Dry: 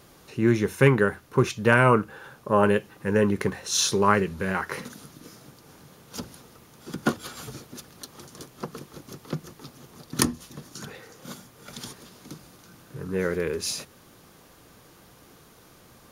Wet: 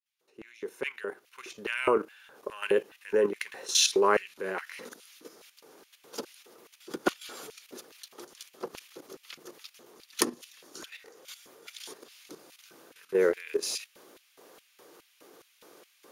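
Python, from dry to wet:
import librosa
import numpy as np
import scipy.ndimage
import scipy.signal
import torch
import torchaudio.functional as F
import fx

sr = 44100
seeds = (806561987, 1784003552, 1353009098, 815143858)

y = fx.fade_in_head(x, sr, length_s=2.2)
y = fx.filter_lfo_highpass(y, sr, shape='square', hz=2.4, low_hz=400.0, high_hz=2500.0, q=2.3)
y = fx.level_steps(y, sr, step_db=11)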